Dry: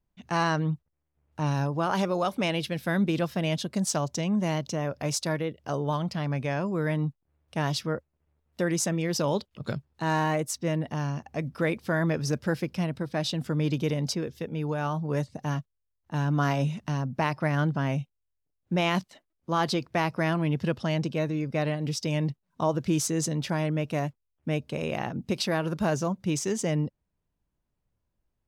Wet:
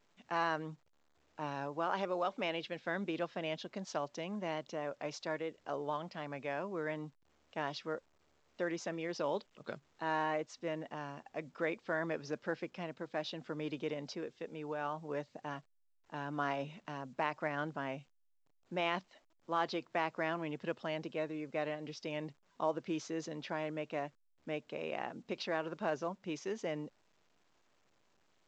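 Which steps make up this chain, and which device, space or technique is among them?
telephone (band-pass filter 340–3,300 Hz; level −7 dB; A-law companding 128 kbit/s 16,000 Hz)

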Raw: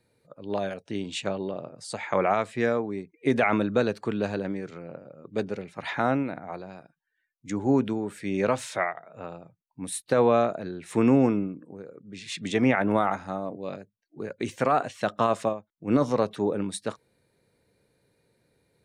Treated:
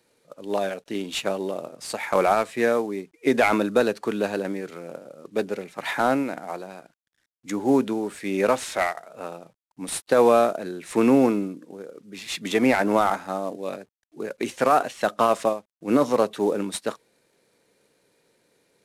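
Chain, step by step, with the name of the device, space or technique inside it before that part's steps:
early wireless headset (high-pass filter 240 Hz 12 dB per octave; variable-slope delta modulation 64 kbit/s)
level +4.5 dB

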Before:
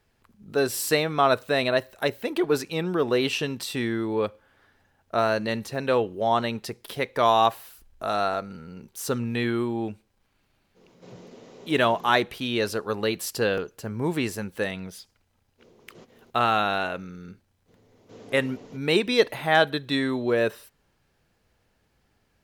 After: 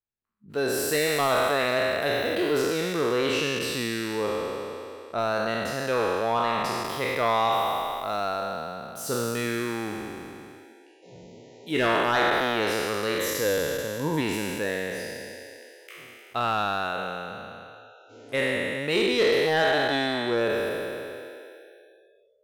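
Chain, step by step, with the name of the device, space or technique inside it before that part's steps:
peak hold with a decay on every bin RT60 2.82 s
saturation between pre-emphasis and de-emphasis (high-shelf EQ 5,300 Hz +9.5 dB; soft clipping −10 dBFS, distortion −16 dB; high-shelf EQ 5,300 Hz −9.5 dB)
noise reduction from a noise print of the clip's start 29 dB
0:13.18–0:14.21: EQ curve with evenly spaced ripples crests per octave 1.1, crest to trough 8 dB
level −4.5 dB

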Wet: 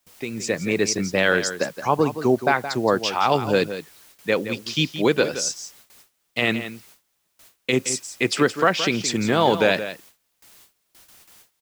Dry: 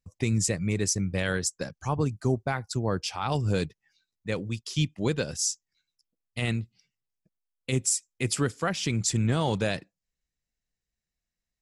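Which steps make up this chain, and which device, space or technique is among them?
dictaphone (band-pass filter 300–4,100 Hz; automatic gain control gain up to 11.5 dB; tape wow and flutter; white noise bed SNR 27 dB)
single-tap delay 170 ms −11.5 dB
noise gate with hold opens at −39 dBFS

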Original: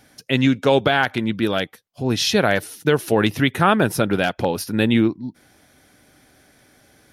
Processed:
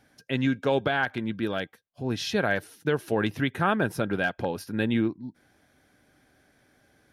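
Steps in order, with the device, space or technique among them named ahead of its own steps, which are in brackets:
inside a helmet (high-shelf EQ 3,700 Hz −7 dB; hollow resonant body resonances 1,600 Hz, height 12 dB, ringing for 85 ms)
level −8 dB

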